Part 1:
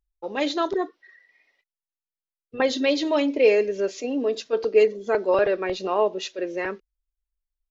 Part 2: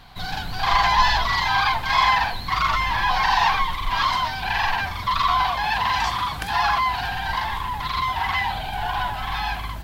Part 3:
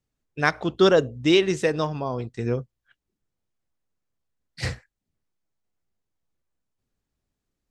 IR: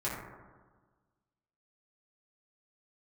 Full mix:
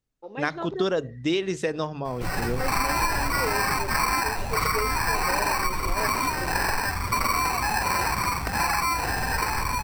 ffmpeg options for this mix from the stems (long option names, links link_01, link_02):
-filter_complex "[0:a]acrossover=split=2800[link_01][link_02];[link_02]acompressor=threshold=-48dB:ratio=4:attack=1:release=60[link_03];[link_01][link_03]amix=inputs=2:normalize=0,volume=-8.5dB[link_04];[1:a]equalizer=frequency=590:width_type=o:width=0.77:gain=-8,acrusher=samples=13:mix=1:aa=0.000001,adelay=2050,volume=2.5dB[link_05];[2:a]bandreject=frequency=50:width_type=h:width=6,bandreject=frequency=100:width_type=h:width=6,bandreject=frequency=150:width_type=h:width=6,volume=-2dB[link_06];[link_04][link_05][link_06]amix=inputs=3:normalize=0,acompressor=threshold=-21dB:ratio=6"